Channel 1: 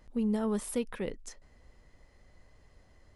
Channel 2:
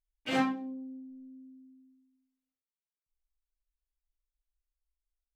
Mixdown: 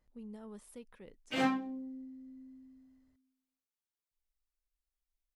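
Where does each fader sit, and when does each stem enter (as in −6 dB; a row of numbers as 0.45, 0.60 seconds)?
−18.0, −2.0 decibels; 0.00, 1.05 seconds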